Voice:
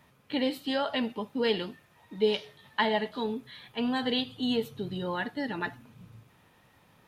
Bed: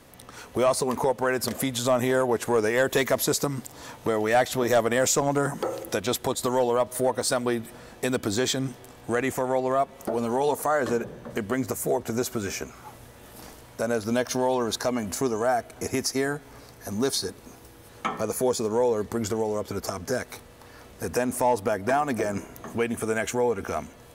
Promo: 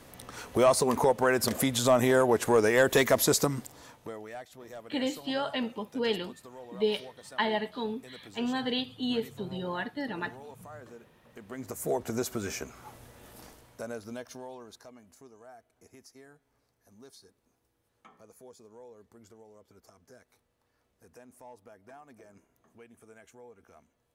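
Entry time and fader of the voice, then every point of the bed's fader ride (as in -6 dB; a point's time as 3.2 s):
4.60 s, -2.0 dB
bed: 3.45 s 0 dB
4.45 s -23.5 dB
11.22 s -23.5 dB
11.9 s -4.5 dB
13.28 s -4.5 dB
15.11 s -27.5 dB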